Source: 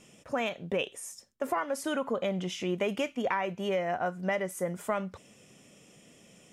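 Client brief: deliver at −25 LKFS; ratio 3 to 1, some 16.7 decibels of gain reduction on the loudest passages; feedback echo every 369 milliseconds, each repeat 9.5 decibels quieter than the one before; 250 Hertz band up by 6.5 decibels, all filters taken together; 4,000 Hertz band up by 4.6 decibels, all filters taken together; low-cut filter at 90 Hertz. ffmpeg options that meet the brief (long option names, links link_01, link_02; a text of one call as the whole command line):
ffmpeg -i in.wav -af "highpass=90,equalizer=frequency=250:width_type=o:gain=9,equalizer=frequency=4000:width_type=o:gain=7,acompressor=threshold=-46dB:ratio=3,aecho=1:1:369|738|1107|1476:0.335|0.111|0.0365|0.012,volume=19.5dB" out.wav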